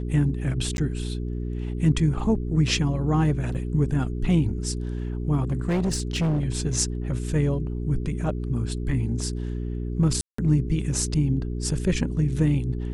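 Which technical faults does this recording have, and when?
hum 60 Hz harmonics 7 -29 dBFS
0.77–0.78 gap
3.54–3.55 gap 6.7 ms
5.42–6.45 clipped -20 dBFS
10.21–10.38 gap 0.174 s

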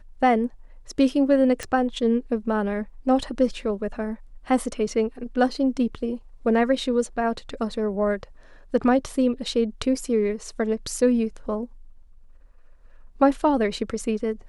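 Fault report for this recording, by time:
1.63 pop -15 dBFS

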